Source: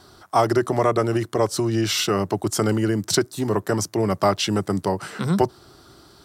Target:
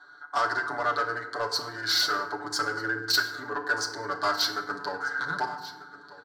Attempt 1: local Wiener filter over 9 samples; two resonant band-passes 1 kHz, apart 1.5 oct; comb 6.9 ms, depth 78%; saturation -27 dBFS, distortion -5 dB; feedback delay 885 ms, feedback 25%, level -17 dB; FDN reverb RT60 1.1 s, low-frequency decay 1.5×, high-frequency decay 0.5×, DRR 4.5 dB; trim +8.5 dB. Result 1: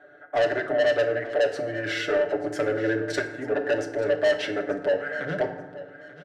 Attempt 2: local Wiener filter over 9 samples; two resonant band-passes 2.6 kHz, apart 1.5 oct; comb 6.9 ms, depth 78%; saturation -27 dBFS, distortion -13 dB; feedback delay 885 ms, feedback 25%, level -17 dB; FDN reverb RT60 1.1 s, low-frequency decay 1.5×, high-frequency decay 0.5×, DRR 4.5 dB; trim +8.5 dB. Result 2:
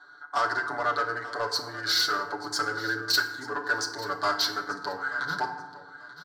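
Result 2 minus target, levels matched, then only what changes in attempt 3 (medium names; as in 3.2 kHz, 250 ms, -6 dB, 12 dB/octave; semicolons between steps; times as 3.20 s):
echo 355 ms early
change: feedback delay 1240 ms, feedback 25%, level -17 dB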